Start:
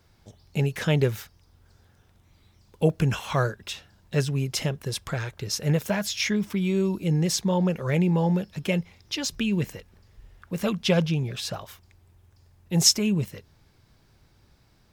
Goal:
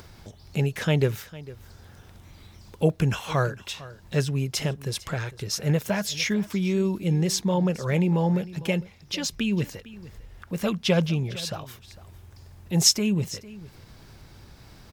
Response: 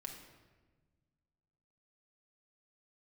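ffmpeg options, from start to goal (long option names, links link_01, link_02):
-filter_complex "[0:a]acompressor=mode=upward:threshold=-36dB:ratio=2.5,asplit=2[link_01][link_02];[link_02]aecho=0:1:453:0.119[link_03];[link_01][link_03]amix=inputs=2:normalize=0"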